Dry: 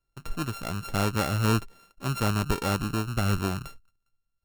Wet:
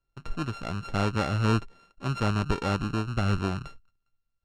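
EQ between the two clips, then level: air absorption 96 m; 0.0 dB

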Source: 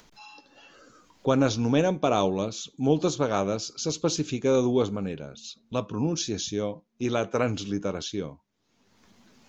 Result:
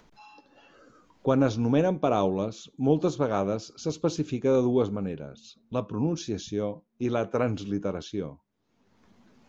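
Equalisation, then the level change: high shelf 2500 Hz -11.5 dB; 0.0 dB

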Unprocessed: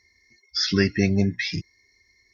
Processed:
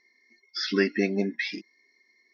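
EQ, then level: brick-wall FIR high-pass 200 Hz; air absorption 170 m; 0.0 dB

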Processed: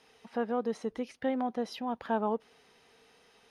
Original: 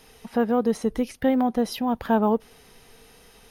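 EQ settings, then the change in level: HPF 360 Hz 6 dB/oct; air absorption 75 m; -6.5 dB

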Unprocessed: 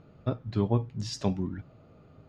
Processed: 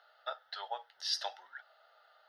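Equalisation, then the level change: inverse Chebyshev high-pass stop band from 200 Hz, stop band 70 dB; fixed phaser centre 1600 Hz, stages 8; +7.5 dB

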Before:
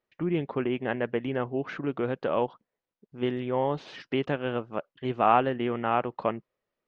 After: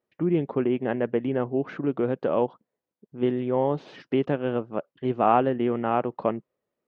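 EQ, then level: HPF 190 Hz 6 dB/oct; tilt shelf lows +6.5 dB, about 790 Hz; +1.5 dB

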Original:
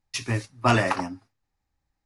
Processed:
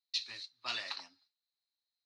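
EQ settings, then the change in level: band-pass 4100 Hz, Q 14; air absorption 51 m; +12.0 dB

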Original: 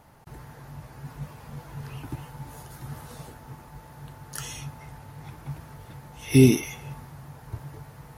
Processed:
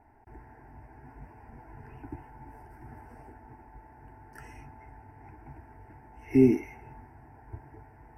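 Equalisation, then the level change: running mean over 13 samples; fixed phaser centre 800 Hz, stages 8; -1.0 dB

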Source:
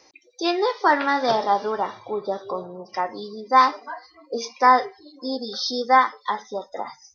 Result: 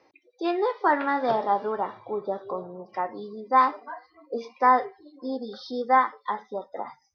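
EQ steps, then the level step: HPF 82 Hz; air absorption 240 m; high shelf 3300 Hz -7.5 dB; -2.0 dB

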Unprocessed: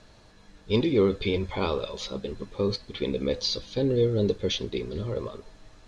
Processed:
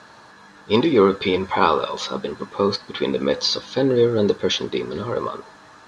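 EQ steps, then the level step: HPF 170 Hz 12 dB/oct; band shelf 1200 Hz +9.5 dB 1.3 oct; +7.0 dB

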